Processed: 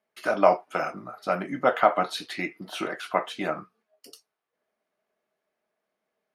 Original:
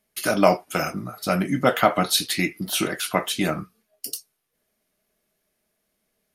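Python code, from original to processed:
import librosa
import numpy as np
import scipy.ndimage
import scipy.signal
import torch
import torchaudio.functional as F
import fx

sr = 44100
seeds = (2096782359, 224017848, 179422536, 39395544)

y = fx.bandpass_q(x, sr, hz=870.0, q=0.84)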